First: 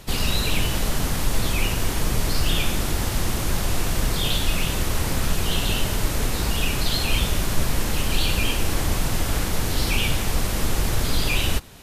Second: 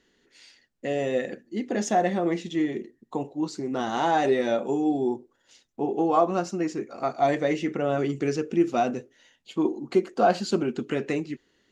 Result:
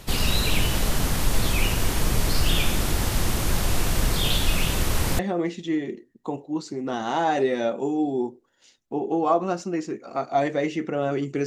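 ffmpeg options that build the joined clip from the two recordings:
-filter_complex "[0:a]apad=whole_dur=11.46,atrim=end=11.46,atrim=end=5.192[s0];[1:a]atrim=start=2.058:end=8.33[s1];[s0][s1]acrossfade=d=0.004:c1=hsin:c2=hsin"

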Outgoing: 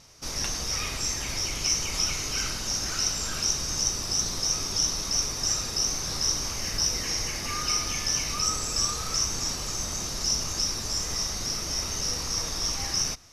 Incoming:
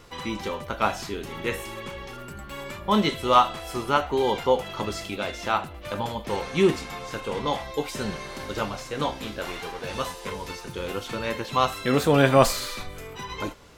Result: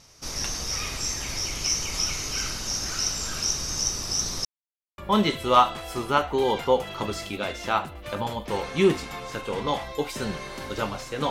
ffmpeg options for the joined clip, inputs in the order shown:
-filter_complex "[0:a]apad=whole_dur=11.3,atrim=end=11.3,asplit=2[s0][s1];[s0]atrim=end=4.45,asetpts=PTS-STARTPTS,afade=t=out:st=4.446:d=0.004:c=hsin[s2];[s1]atrim=start=4.45:end=4.98,asetpts=PTS-STARTPTS,volume=0[s3];[1:a]atrim=start=2.77:end=9.09,asetpts=PTS-STARTPTS,afade=t=in:d=0.004:c=hsin[s4];[s2][s3][s4]concat=n=3:v=0:a=1"

